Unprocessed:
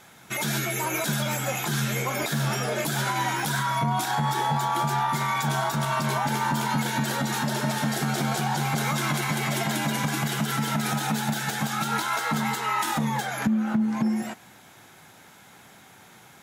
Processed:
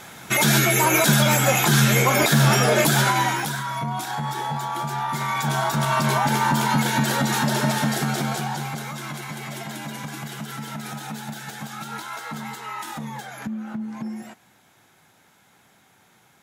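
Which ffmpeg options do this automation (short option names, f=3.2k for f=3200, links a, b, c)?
-af "volume=17dB,afade=t=out:st=2.84:d=0.73:silence=0.251189,afade=t=in:st=4.94:d=1.08:silence=0.421697,afade=t=out:st=7.62:d=1.25:silence=0.251189"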